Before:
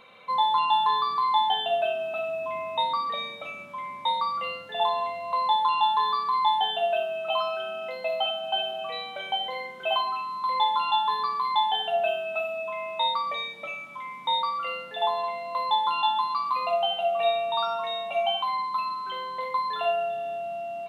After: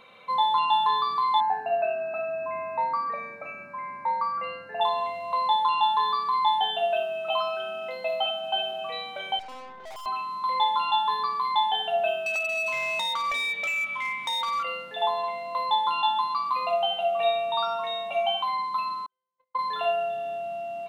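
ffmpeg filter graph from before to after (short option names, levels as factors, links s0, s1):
-filter_complex "[0:a]asettb=1/sr,asplit=3[s0][s1][s2];[s0]atrim=end=1.404[s3];[s1]atrim=start=1.4:end=4.81,asetpts=PTS-STARTPTS,afade=t=in:d=0.004:c=qsin,afade=t=out:st=3.406:d=0.004:c=qsin,asuperstop=centerf=3300:order=20:qfactor=2.9,bass=f=250:g=-1,treble=f=4000:g=-13,aeval=exprs='val(0)+0.00316*sin(2*PI*1600*n/s)':c=same[s4];[s2]atrim=start=4.806[s5];[s3][s4]acrossfade=d=0.004:c1=hsin:c2=qsin[s6];[s6][s5]acrossfade=d=0.004:c1=qsin:c2=hsin,asettb=1/sr,asplit=3[s7][s8][s9];[s7]atrim=end=9.394[s10];[s8]atrim=start=9.39:end=10.06,asetpts=PTS-STARTPTS,afade=t=in:d=0.004:c=qsin,afade=t=out:st=0.666:d=0.004:c=qsin,highshelf=f=1500:t=q:w=3:g=-13,aeval=exprs='(tanh(100*val(0)+0.65)-tanh(0.65))/100':c=same[s11];[s9]atrim=start=10.056[s12];[s10][s11]acrossfade=d=0.004:c1=hsin:c2=qsin[s13];[s13][s12]acrossfade=d=0.004:c1=qsin:c2=hsin,asettb=1/sr,asplit=3[s14][s15][s16];[s14]atrim=end=12.264[s17];[s15]atrim=start=12.26:end=14.63,asetpts=PTS-STARTPTS,afade=t=in:d=0.004:c=qsin,afade=t=out:st=2.366:d=0.004:c=qsin,equalizer=f=2500:t=o:w=1.4:g=14.5,acompressor=threshold=0.0708:ratio=12:attack=3.2:release=140:knee=1:detection=peak,volume=15.8,asoftclip=hard,volume=0.0631[s18];[s16]atrim=start=14.626[s19];[s17][s18]acrossfade=d=0.004:c1=hsin:c2=qsin[s20];[s20][s19]acrossfade=d=0.004:c1=qsin:c2=hsin,asettb=1/sr,asplit=3[s21][s22][s23];[s21]atrim=end=19.064[s24];[s22]atrim=start=19.06:end=19.59,asetpts=PTS-STARTPTS,afade=t=in:d=0.004:c=qsin,afade=t=out:st=0.526:d=0.004:c=qsin,lowpass=f=2000:p=1,agate=range=0.00251:threshold=0.0447:ratio=16:release=100:detection=peak[s25];[s23]atrim=start=19.586[s26];[s24][s25]acrossfade=d=0.004:c1=hsin:c2=qsin[s27];[s27][s26]acrossfade=d=0.004:c1=qsin:c2=hsin"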